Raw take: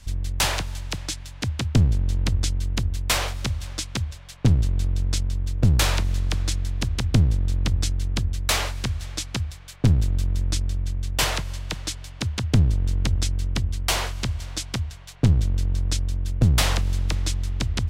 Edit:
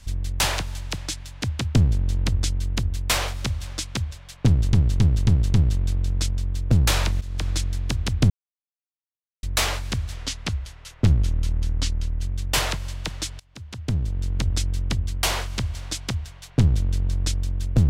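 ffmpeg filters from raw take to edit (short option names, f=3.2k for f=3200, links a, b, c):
-filter_complex "[0:a]asplit=11[a][b][c][d][e][f][g][h][i][j][k];[a]atrim=end=4.732[l];[b]atrim=start=4.458:end=4.732[m];[c]atrim=start=4.458:end=4.732[n];[d]atrim=start=4.458:end=4.732[o];[e]atrim=start=4.458:end=6.13,asetpts=PTS-STARTPTS,afade=t=out:st=1.668:d=0.004:c=hsin:silence=0.188365[p];[f]atrim=start=6.13:end=7.22,asetpts=PTS-STARTPTS,afade=t=in:d=0.28:silence=0.188365,afade=t=out:st=1.086:d=0.004:c=hsin[q];[g]atrim=start=7.22:end=8.35,asetpts=PTS-STARTPTS,volume=0[r];[h]atrim=start=8.35:end=9.084,asetpts=PTS-STARTPTS,afade=t=in:d=0.004:c=hsin[s];[i]atrim=start=9.08:end=10.87,asetpts=PTS-STARTPTS,asetrate=38367,aresample=44100,atrim=end_sample=90734,asetpts=PTS-STARTPTS[t];[j]atrim=start=10.866:end=12.05,asetpts=PTS-STARTPTS,afade=t=out:st=1.18:d=0.004:c=hsin:silence=0.0630957[u];[k]atrim=start=12.05,asetpts=PTS-STARTPTS,afade=t=in:d=1.21:silence=0.0630957[v];[l][m]acrossfade=d=0.004:c1=hsin:c2=hsin[w];[w][n]acrossfade=d=0.004:c1=hsin:c2=hsin[x];[x][o]acrossfade=d=0.004:c1=hsin:c2=hsin[y];[p][q][r][s]concat=n=4:v=0:a=1[z];[y][z]acrossfade=d=0.004:c1=hsin:c2=hsin[aa];[aa][t]acrossfade=d=0.004:c1=hsin:c2=hsin[ab];[u][v]concat=n=2:v=0:a=1[ac];[ab][ac]acrossfade=d=0.004:c1=hsin:c2=hsin"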